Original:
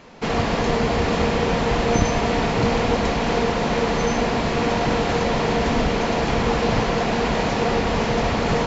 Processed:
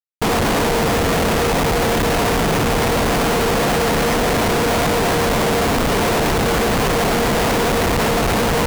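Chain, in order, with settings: in parallel at -4 dB: overload inside the chain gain 20.5 dB; on the sum: treble shelf 5.9 kHz -7.5 dB; on a send: filtered feedback delay 330 ms, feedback 38%, low-pass 2.1 kHz, level -10.5 dB; on the sum: peak limiter -15.5 dBFS, peak gain reduction 10.5 dB; hum notches 60/120/180/240 Hz; Schmitt trigger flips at -30 dBFS; trim +6 dB

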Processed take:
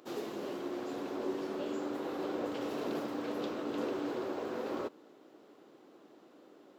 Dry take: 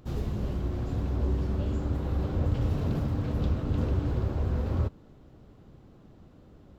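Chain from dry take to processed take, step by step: Chebyshev high-pass 320 Hz, order 3; trim +2 dB

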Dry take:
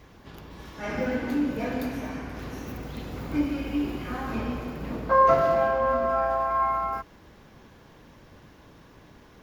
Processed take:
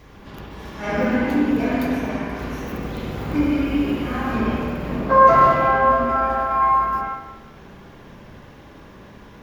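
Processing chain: spring tank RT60 1 s, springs 54/59 ms, chirp 75 ms, DRR -2.5 dB; trim +4 dB

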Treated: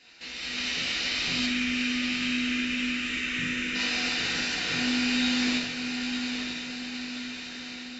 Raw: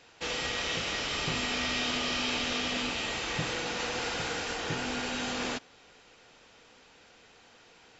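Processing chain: graphic EQ 125/250/500/1000/2000/4000 Hz -6/+7/-4/-6/+7/+10 dB; compression 2:1, threshold -44 dBFS, peak gain reduction 12.5 dB; band-stop 3.3 kHz, Q 8.4; level rider gain up to 11 dB; 1.46–3.75 s: static phaser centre 1.9 kHz, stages 4; echo that smears into a reverb 932 ms, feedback 50%, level -6 dB; reverberation, pre-delay 3 ms, DRR -4.5 dB; trim -7.5 dB

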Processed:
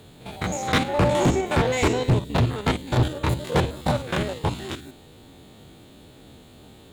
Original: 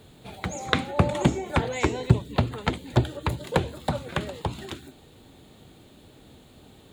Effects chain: spectrogram pixelated in time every 50 ms; overload inside the chain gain 22.5 dB; Chebyshev shaper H 7 -26 dB, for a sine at -22 dBFS; trim +8.5 dB

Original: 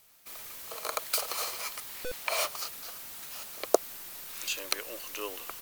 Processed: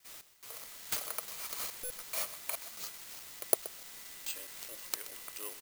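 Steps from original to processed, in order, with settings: slices played last to first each 213 ms, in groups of 2; delay 126 ms -16 dB; careless resampling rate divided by 4×, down none, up zero stuff; trim -11.5 dB

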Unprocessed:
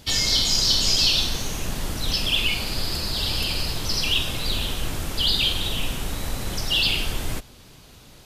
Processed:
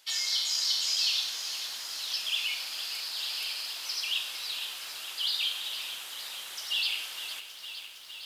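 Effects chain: high-pass 1.2 kHz 12 dB/octave; bit-crushed delay 460 ms, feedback 80%, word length 8-bit, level -10.5 dB; trim -8 dB

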